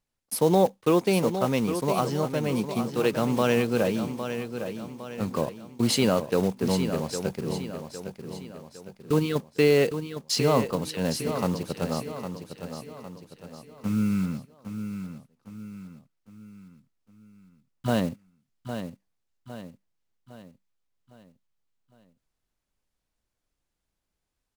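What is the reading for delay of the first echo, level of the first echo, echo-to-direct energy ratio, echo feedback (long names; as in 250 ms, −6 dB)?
808 ms, −9.0 dB, −8.0 dB, 46%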